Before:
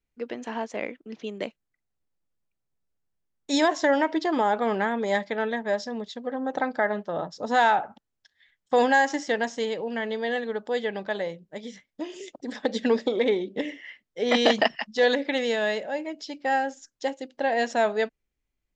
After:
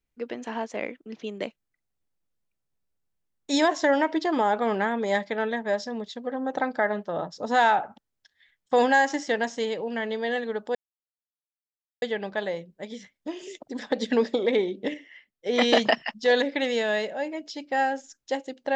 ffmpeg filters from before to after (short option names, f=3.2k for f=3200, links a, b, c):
-filter_complex "[0:a]asplit=4[a][b][c][d];[a]atrim=end=10.75,asetpts=PTS-STARTPTS,afade=t=out:st=10.746:d=0.004:c=hsin,apad=pad_dur=1.27[e];[b]atrim=start=10.75:end=13.672,asetpts=PTS-STARTPTS,afade=t=in:d=0.004:c=hsin[f];[c]atrim=start=13.668:end=14.192,asetpts=PTS-STARTPTS,volume=-6.5dB[g];[d]atrim=start=14.188[h];[e][f]concat=n=2:v=0:a=1[i];[i][g]acrossfade=d=0.004:c1=hsin:c2=hsin[j];[j][h]acrossfade=d=0.004:c1=hsin:c2=hsin"